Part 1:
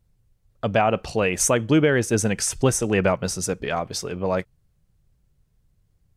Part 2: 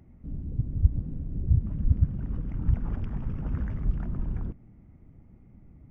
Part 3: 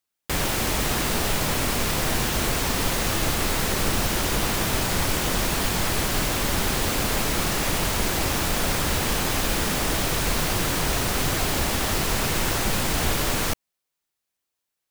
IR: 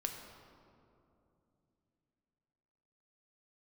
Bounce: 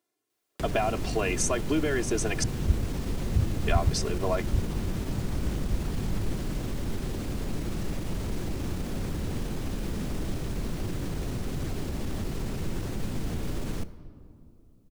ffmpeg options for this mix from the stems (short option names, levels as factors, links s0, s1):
-filter_complex "[0:a]highpass=f=280:w=0.5412,highpass=f=280:w=1.3066,aecho=1:1:2.9:0.87,acompressor=threshold=0.1:ratio=6,volume=0.631,asplit=3[s0][s1][s2];[s0]atrim=end=2.44,asetpts=PTS-STARTPTS,afade=t=out:st=2.436:d=0.004:c=hsin[s3];[s1]atrim=start=2.44:end=3.67,asetpts=PTS-STARTPTS,volume=0[s4];[s2]atrim=start=3.67,asetpts=PTS-STARTPTS,afade=t=in:d=0.004:c=hsin[s5];[s3][s4][s5]concat=n=3:v=0:a=1[s6];[1:a]adelay=1850,volume=0.668[s7];[2:a]acrossover=split=130|410[s8][s9][s10];[s8]acompressor=threshold=0.0398:ratio=4[s11];[s9]acompressor=threshold=0.02:ratio=4[s12];[s10]acompressor=threshold=0.00501:ratio=4[s13];[s11][s12][s13]amix=inputs=3:normalize=0,alimiter=limit=0.0631:level=0:latency=1:release=21,adelay=300,volume=0.75,asplit=2[s14][s15];[s15]volume=0.473[s16];[3:a]atrim=start_sample=2205[s17];[s16][s17]afir=irnorm=-1:irlink=0[s18];[s6][s7][s14][s18]amix=inputs=4:normalize=0,acrossover=split=9900[s19][s20];[s20]acompressor=threshold=0.00251:ratio=4:attack=1:release=60[s21];[s19][s21]amix=inputs=2:normalize=0"